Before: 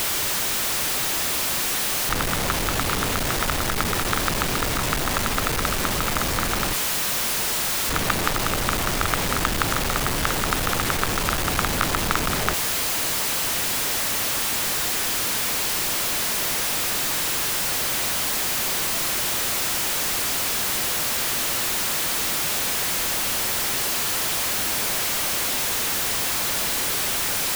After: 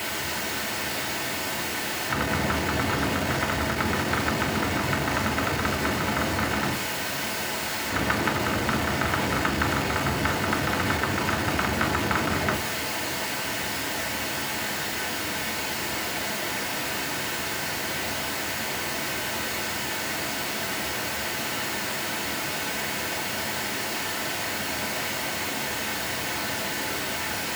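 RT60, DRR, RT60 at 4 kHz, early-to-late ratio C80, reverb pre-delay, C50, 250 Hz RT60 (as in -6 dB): 0.45 s, -1.0 dB, 0.45 s, 16.0 dB, 3 ms, 11.5 dB, 0.40 s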